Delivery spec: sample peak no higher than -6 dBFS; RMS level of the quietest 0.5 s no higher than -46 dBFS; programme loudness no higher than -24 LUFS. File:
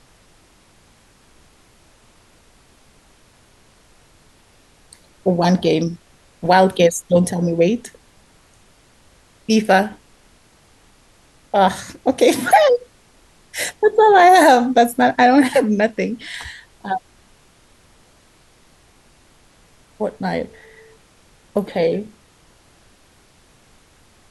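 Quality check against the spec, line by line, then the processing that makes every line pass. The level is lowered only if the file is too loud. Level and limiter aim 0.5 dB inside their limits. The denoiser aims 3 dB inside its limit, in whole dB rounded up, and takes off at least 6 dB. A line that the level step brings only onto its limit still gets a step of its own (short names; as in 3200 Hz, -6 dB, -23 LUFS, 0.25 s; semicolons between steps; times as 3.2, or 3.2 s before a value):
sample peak -2.5 dBFS: fail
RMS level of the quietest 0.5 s -53 dBFS: OK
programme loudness -16.5 LUFS: fail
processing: gain -8 dB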